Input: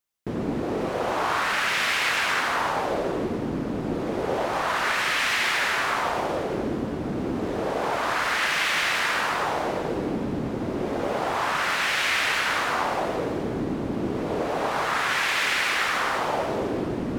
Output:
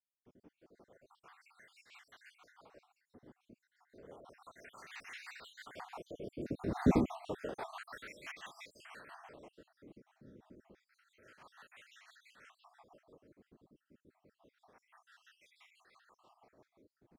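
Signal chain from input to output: random holes in the spectrogram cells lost 65%; Doppler pass-by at 6.89 s, 16 m/s, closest 1.1 m; rotary cabinet horn 6 Hz; trim +7 dB

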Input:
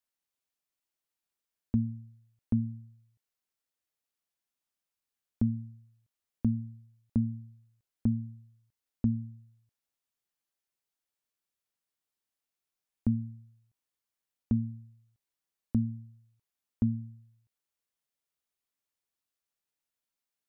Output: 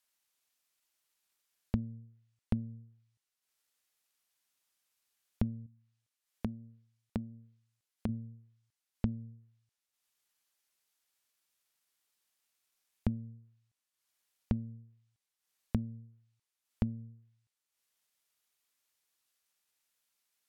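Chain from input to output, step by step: compression 3:1, threshold -33 dBFS, peak gain reduction 8.5 dB; 5.66–8.09 s: bass shelf 210 Hz -8.5 dB; low-pass that closes with the level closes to 330 Hz, closed at -38.5 dBFS; transient shaper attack +4 dB, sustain -7 dB; tape noise reduction on one side only encoder only

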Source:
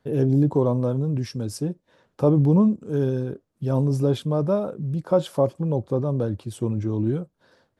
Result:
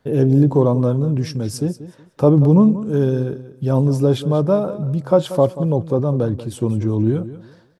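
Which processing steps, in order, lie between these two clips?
feedback delay 185 ms, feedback 24%, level -14.5 dB; trim +5.5 dB

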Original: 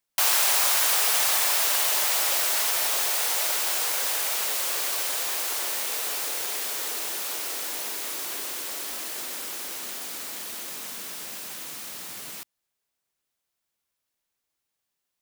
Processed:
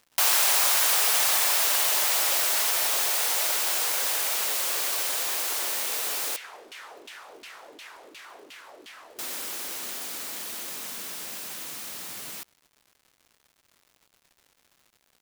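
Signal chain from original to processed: 6.36–9.19 s: LFO band-pass saw down 2.8 Hz 260–3100 Hz; crackle 260 per s -47 dBFS

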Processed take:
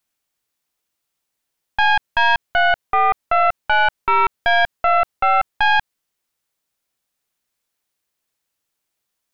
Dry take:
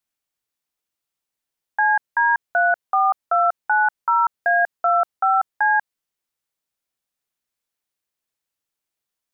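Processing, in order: tracing distortion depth 0.11 ms; peak limiter -15.5 dBFS, peak gain reduction 4.5 dB; trim +6.5 dB

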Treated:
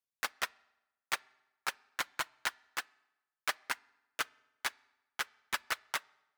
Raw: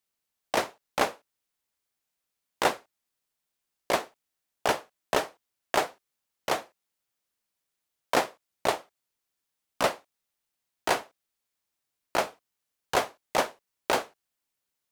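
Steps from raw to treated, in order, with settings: reverb removal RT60 1.8 s; speed mistake 33 rpm record played at 78 rpm; on a send: reverberation RT60 1.0 s, pre-delay 4 ms, DRR 23.5 dB; on the sum: trim -7.5 dB

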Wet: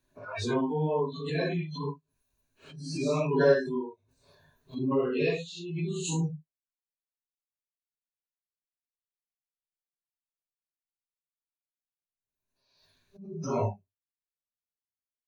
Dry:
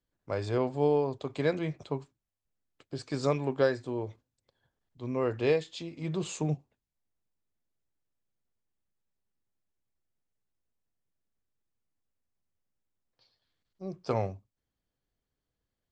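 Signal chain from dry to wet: phase randomisation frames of 200 ms; spectral noise reduction 29 dB; speed mistake 24 fps film run at 25 fps; rippled EQ curve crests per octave 1.5, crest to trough 10 dB; swell ahead of each attack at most 54 dB/s

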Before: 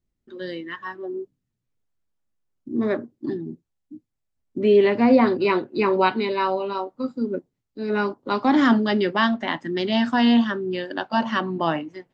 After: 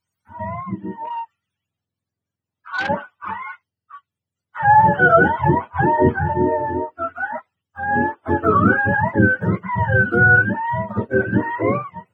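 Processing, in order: spectrum inverted on a logarithmic axis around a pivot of 590 Hz; 1.05–2.89 s: transformer saturation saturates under 1.9 kHz; trim +5 dB

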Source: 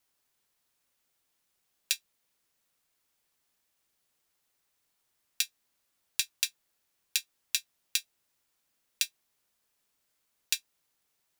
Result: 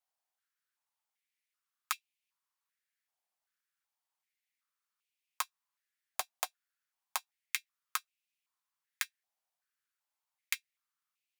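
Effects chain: Chebyshev shaper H 3 -8 dB, 5 -36 dB, 7 -36 dB, 8 -19 dB, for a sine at -3.5 dBFS; step-sequenced high-pass 2.6 Hz 730–2500 Hz; trim -1.5 dB

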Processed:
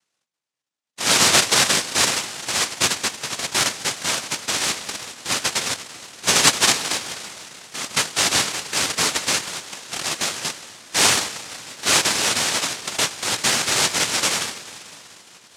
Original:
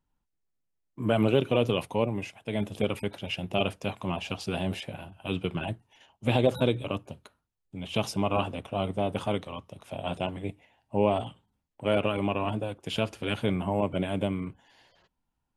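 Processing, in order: low-pass 2.4 kHz 12 dB/octave; Schroeder reverb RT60 3.9 s, combs from 27 ms, DRR 12 dB; noise-vocoded speech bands 1; trim +7.5 dB

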